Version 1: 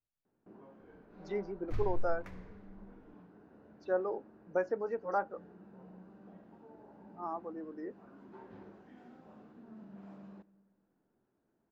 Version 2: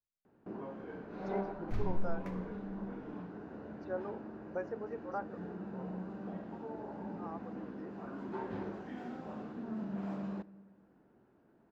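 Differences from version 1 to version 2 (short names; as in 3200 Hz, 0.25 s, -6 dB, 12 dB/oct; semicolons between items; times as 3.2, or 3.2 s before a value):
speech -7.0 dB; first sound +12.0 dB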